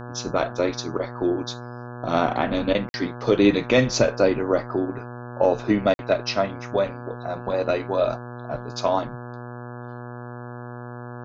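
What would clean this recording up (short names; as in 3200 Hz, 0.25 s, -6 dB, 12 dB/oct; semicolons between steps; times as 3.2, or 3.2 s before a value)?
de-hum 121.5 Hz, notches 14; interpolate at 2.89/5.94, 51 ms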